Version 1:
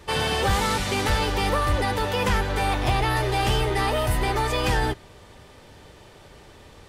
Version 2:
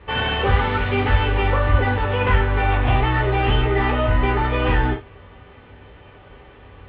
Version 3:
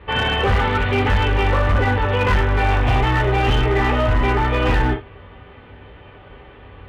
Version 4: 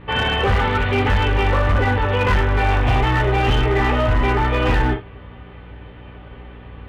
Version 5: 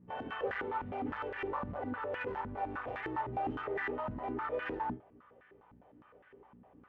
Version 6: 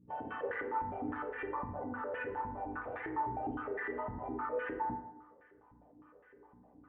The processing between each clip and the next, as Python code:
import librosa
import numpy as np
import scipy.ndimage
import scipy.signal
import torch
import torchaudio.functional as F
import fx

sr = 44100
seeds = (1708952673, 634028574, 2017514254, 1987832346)

y1 = scipy.signal.sosfilt(scipy.signal.butter(6, 3000.0, 'lowpass', fs=sr, output='sos'), x)
y1 = fx.rev_gated(y1, sr, seeds[0], gate_ms=110, shape='falling', drr_db=-1.0)
y2 = np.clip(y1, -10.0 ** (-14.5 / 20.0), 10.0 ** (-14.5 / 20.0))
y2 = y2 * librosa.db_to_amplitude(2.5)
y3 = fx.add_hum(y2, sr, base_hz=60, snr_db=22)
y4 = fx.filter_held_bandpass(y3, sr, hz=9.8, low_hz=210.0, high_hz=1700.0)
y4 = y4 * librosa.db_to_amplitude(-8.5)
y5 = fx.envelope_sharpen(y4, sr, power=1.5)
y5 = fx.rev_fdn(y5, sr, rt60_s=0.89, lf_ratio=0.9, hf_ratio=0.6, size_ms=20.0, drr_db=5.0)
y5 = y5 * librosa.db_to_amplitude(-3.0)